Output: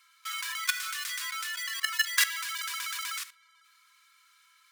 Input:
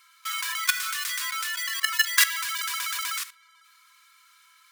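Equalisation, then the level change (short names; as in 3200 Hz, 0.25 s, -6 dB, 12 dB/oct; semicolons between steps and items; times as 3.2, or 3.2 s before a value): HPF 1000 Hz; high shelf 11000 Hz -4.5 dB; -4.0 dB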